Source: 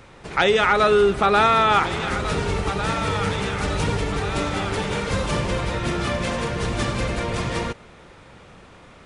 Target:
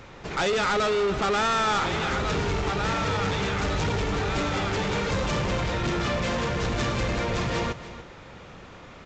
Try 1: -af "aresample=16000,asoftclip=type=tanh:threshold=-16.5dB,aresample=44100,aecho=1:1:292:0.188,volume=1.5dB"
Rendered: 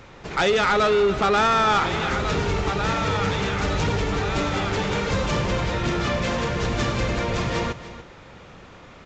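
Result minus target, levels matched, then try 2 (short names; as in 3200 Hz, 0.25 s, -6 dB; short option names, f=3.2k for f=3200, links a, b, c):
soft clip: distortion -5 dB
-af "aresample=16000,asoftclip=type=tanh:threshold=-23.5dB,aresample=44100,aecho=1:1:292:0.188,volume=1.5dB"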